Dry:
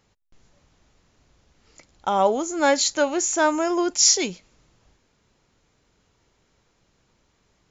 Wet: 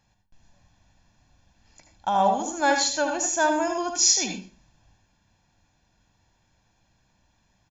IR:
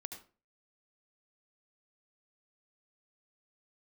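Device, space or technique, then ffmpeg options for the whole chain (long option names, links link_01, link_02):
microphone above a desk: -filter_complex "[0:a]aecho=1:1:1.2:0.69[link_01];[1:a]atrim=start_sample=2205[link_02];[link_01][link_02]afir=irnorm=-1:irlink=0"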